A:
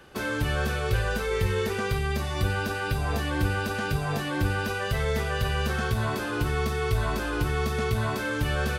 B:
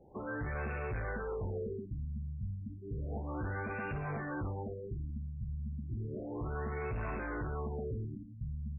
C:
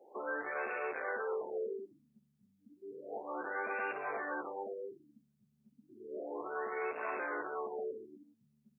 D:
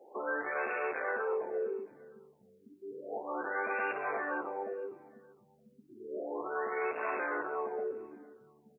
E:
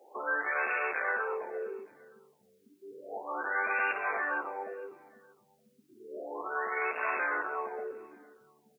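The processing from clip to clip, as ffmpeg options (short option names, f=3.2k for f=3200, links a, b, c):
-af "asoftclip=type=tanh:threshold=-28dB,afftfilt=real='re*lt(b*sr/1024,220*pow(2800/220,0.5+0.5*sin(2*PI*0.32*pts/sr)))':imag='im*lt(b*sr/1024,220*pow(2800/220,0.5+0.5*sin(2*PI*0.32*pts/sr)))':win_size=1024:overlap=0.75,volume=-5.5dB"
-af "highpass=f=390:w=0.5412,highpass=f=390:w=1.3066,volume=3.5dB"
-af "aecho=1:1:459|918:0.0944|0.0293,volume=3.5dB"
-af "tiltshelf=f=790:g=-8,volume=1dB"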